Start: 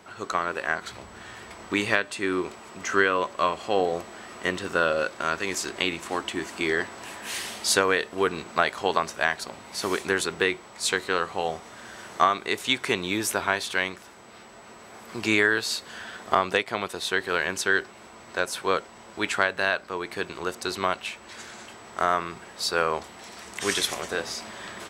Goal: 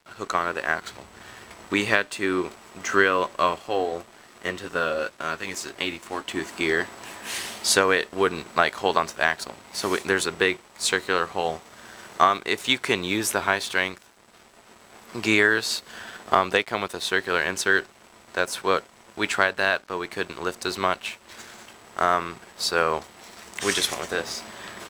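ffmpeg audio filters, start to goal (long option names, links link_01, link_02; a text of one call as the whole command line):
ffmpeg -i in.wav -filter_complex "[0:a]asplit=3[link_01][link_02][link_03];[link_01]afade=type=out:start_time=3.58:duration=0.02[link_04];[link_02]flanger=delay=6.6:depth=3:regen=-43:speed=1.9:shape=triangular,afade=type=in:start_time=3.58:duration=0.02,afade=type=out:start_time=6.28:duration=0.02[link_05];[link_03]afade=type=in:start_time=6.28:duration=0.02[link_06];[link_04][link_05][link_06]amix=inputs=3:normalize=0,aeval=exprs='sgn(val(0))*max(abs(val(0))-0.00398,0)':channel_layout=same,volume=2.5dB" out.wav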